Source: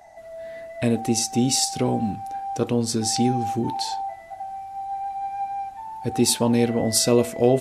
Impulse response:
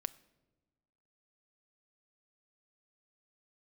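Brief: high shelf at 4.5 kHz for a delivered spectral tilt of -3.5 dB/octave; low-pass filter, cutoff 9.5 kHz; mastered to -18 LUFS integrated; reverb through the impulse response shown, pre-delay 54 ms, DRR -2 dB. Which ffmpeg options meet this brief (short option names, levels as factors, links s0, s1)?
-filter_complex "[0:a]lowpass=9500,highshelf=f=4500:g=6,asplit=2[s0][s1];[1:a]atrim=start_sample=2205,adelay=54[s2];[s1][s2]afir=irnorm=-1:irlink=0,volume=1.5[s3];[s0][s3]amix=inputs=2:normalize=0,volume=0.944"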